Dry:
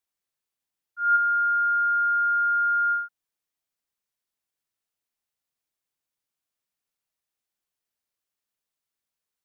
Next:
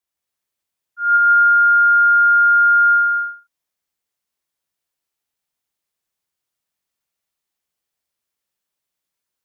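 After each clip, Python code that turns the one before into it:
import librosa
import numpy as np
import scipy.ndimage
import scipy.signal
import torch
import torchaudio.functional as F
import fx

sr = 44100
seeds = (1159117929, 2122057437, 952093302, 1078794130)

y = fx.rev_gated(x, sr, seeds[0], gate_ms=400, shape='flat', drr_db=-3.5)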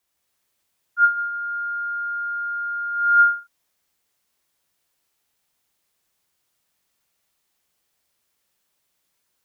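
y = fx.over_compress(x, sr, threshold_db=-20.0, ratio=-0.5)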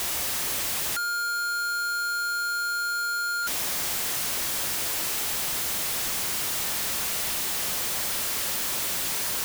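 y = np.sign(x) * np.sqrt(np.mean(np.square(x)))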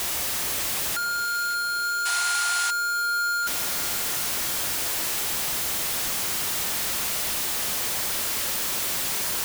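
y = fx.echo_alternate(x, sr, ms=290, hz=1600.0, feedback_pct=71, wet_db=-10)
y = fx.spec_paint(y, sr, seeds[1], shape='noise', start_s=2.05, length_s=0.66, low_hz=660.0, high_hz=11000.0, level_db=-30.0)
y = F.gain(torch.from_numpy(y), 1.0).numpy()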